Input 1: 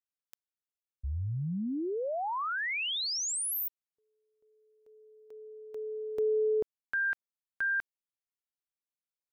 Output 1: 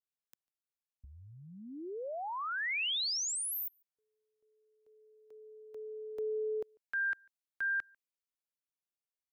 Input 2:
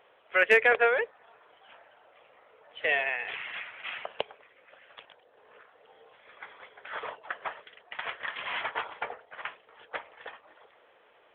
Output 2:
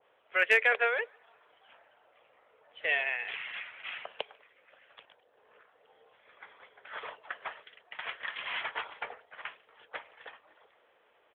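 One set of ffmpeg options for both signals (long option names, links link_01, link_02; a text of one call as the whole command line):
ffmpeg -i in.wav -filter_complex "[0:a]acrossover=split=330|1400[link_01][link_02][link_03];[link_01]acompressor=threshold=-47dB:ratio=6:release=667:knee=6[link_04];[link_04][link_02][link_03]amix=inputs=3:normalize=0,asplit=2[link_05][link_06];[link_06]adelay=145.8,volume=-30dB,highshelf=frequency=4000:gain=-3.28[link_07];[link_05][link_07]amix=inputs=2:normalize=0,adynamicequalizer=threshold=0.00891:dfrequency=1500:dqfactor=0.7:tfrequency=1500:tqfactor=0.7:attack=5:release=100:ratio=0.375:range=3:mode=boostabove:tftype=highshelf,volume=-6dB" out.wav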